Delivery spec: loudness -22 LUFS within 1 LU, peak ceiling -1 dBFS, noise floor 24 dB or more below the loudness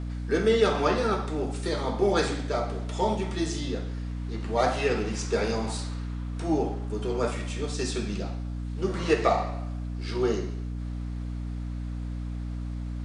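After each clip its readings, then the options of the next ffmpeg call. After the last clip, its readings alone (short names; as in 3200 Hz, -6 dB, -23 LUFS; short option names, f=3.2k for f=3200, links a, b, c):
hum 60 Hz; harmonics up to 300 Hz; hum level -30 dBFS; loudness -29.0 LUFS; peak -8.0 dBFS; loudness target -22.0 LUFS
-> -af "bandreject=f=60:t=h:w=6,bandreject=f=120:t=h:w=6,bandreject=f=180:t=h:w=6,bandreject=f=240:t=h:w=6,bandreject=f=300:t=h:w=6"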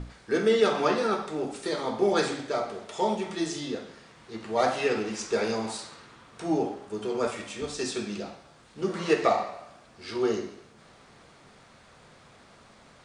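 hum none; loudness -28.5 LUFS; peak -8.5 dBFS; loudness target -22.0 LUFS
-> -af "volume=6.5dB"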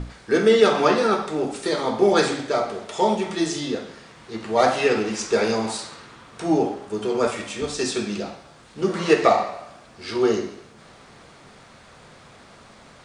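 loudness -22.0 LUFS; peak -2.0 dBFS; noise floor -49 dBFS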